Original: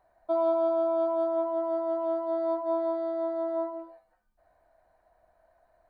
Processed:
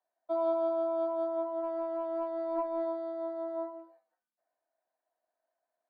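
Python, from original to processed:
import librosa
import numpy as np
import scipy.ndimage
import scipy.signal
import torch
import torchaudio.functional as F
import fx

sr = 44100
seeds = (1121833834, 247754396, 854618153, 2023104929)

y = scipy.signal.sosfilt(scipy.signal.butter(12, 220.0, 'highpass', fs=sr, output='sos'), x)
y = fx.transient(y, sr, attack_db=-9, sustain_db=12, at=(1.62, 2.85), fade=0.02)
y = fx.band_widen(y, sr, depth_pct=40)
y = F.gain(torch.from_numpy(y), -5.0).numpy()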